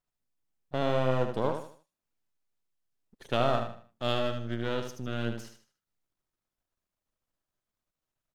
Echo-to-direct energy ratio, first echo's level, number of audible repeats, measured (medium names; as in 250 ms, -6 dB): -6.5 dB, -7.0 dB, 3